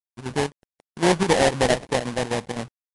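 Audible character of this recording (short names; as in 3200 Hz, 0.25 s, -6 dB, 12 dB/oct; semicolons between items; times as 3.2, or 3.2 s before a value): a quantiser's noise floor 8-bit, dither none; chopped level 3.9 Hz, depth 60%, duty 80%; aliases and images of a low sample rate 1300 Hz, jitter 20%; MP3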